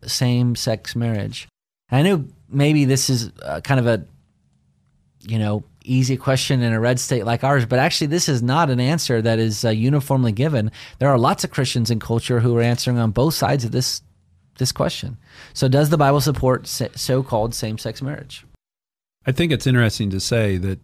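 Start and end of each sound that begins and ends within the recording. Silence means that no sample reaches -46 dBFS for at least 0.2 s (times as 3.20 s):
1.89–4.16 s
5.21–14.07 s
14.56–18.55 s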